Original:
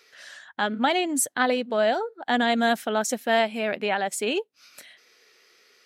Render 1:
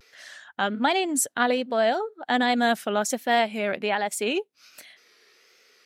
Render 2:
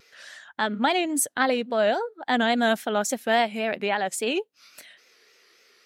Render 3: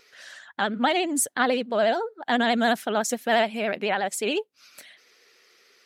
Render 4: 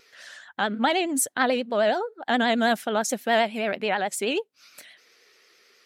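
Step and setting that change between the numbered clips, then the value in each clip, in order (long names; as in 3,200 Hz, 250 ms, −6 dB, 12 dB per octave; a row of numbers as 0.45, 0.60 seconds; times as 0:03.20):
pitch vibrato, speed: 1.3, 3.6, 14, 9.4 Hertz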